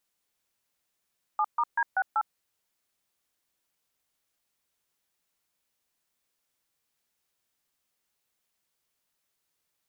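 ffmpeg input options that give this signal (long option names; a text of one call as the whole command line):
ffmpeg -f lavfi -i "aevalsrc='0.0562*clip(min(mod(t,0.192),0.055-mod(t,0.192))/0.002,0,1)*(eq(floor(t/0.192),0)*(sin(2*PI*852*mod(t,0.192))+sin(2*PI*1209*mod(t,0.192)))+eq(floor(t/0.192),1)*(sin(2*PI*941*mod(t,0.192))+sin(2*PI*1209*mod(t,0.192)))+eq(floor(t/0.192),2)*(sin(2*PI*941*mod(t,0.192))+sin(2*PI*1633*mod(t,0.192)))+eq(floor(t/0.192),3)*(sin(2*PI*770*mod(t,0.192))+sin(2*PI*1477*mod(t,0.192)))+eq(floor(t/0.192),4)*(sin(2*PI*852*mod(t,0.192))+sin(2*PI*1336*mod(t,0.192))))':duration=0.96:sample_rate=44100" out.wav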